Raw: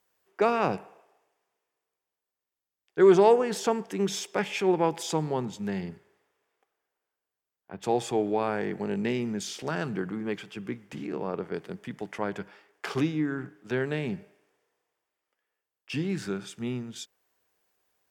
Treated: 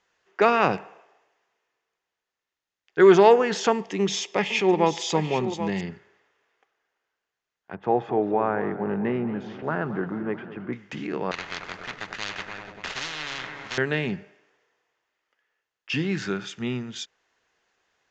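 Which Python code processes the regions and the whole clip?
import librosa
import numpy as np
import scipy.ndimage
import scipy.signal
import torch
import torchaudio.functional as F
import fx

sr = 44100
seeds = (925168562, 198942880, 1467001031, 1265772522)

y = fx.chain(x, sr, fx.peak_eq(hz=1500.0, db=-14.0, octaves=0.27),
    fx.echo_single(ms=784, db=-10.5), at=(3.72, 5.81))
y = fx.chain(y, sr, fx.cheby1_lowpass(hz=1100.0, order=2),
    fx.echo_warbled(ms=219, feedback_pct=68, rate_hz=2.8, cents=142, wet_db=-14.0), at=(7.75, 10.73))
y = fx.chain(y, sr, fx.median_filter(points=41),
    fx.echo_heads(ms=97, heads='first and third', feedback_pct=48, wet_db=-18.5),
    fx.spectral_comp(ratio=10.0), at=(11.31, 13.78))
y = scipy.signal.sosfilt(scipy.signal.ellip(4, 1.0, 40, 6900.0, 'lowpass', fs=sr, output='sos'), y)
y = fx.peak_eq(y, sr, hz=2000.0, db=6.5, octaves=1.7)
y = fx.notch(y, sr, hz=2300.0, q=20.0)
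y = y * librosa.db_to_amplitude(4.0)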